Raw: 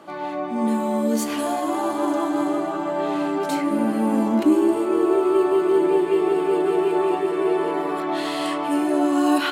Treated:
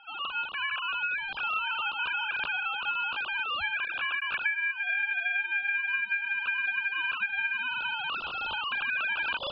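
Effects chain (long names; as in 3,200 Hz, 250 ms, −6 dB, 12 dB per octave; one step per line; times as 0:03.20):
three sine waves on the formant tracks
low-pass filter 1,300 Hz 12 dB per octave
low-shelf EQ 400 Hz −5.5 dB
downward compressor 12 to 1, threshold −27 dBFS, peak gain reduction 16 dB
ring modulation 2,000 Hz
level +3 dB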